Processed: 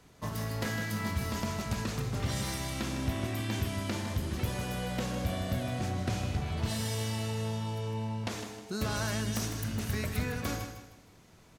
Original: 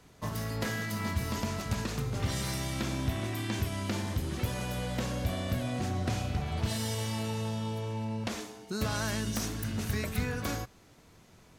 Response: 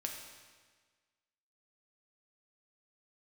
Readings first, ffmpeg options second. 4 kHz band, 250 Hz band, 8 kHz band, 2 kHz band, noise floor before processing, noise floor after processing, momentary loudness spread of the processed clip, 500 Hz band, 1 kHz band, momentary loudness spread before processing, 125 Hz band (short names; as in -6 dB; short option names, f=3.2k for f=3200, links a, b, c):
-0.5 dB, -0.5 dB, -0.5 dB, -0.5 dB, -58 dBFS, -58 dBFS, 3 LU, -0.5 dB, -0.5 dB, 3 LU, 0.0 dB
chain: -af "aecho=1:1:156|312|468|624:0.355|0.124|0.0435|0.0152,volume=-1dB"